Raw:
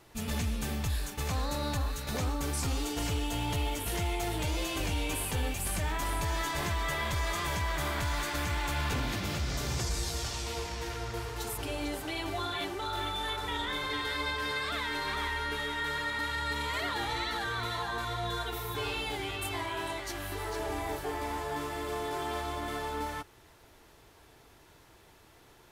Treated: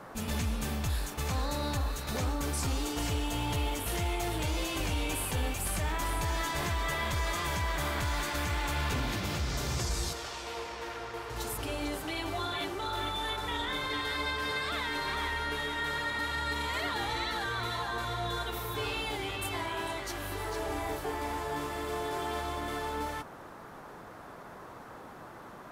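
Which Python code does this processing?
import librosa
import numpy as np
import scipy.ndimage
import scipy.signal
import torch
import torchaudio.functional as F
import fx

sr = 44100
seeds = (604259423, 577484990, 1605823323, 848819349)

y = fx.dmg_noise_band(x, sr, seeds[0], low_hz=100.0, high_hz=1400.0, level_db=-48.0)
y = fx.bass_treble(y, sr, bass_db=-13, treble_db=-8, at=(10.13, 11.3))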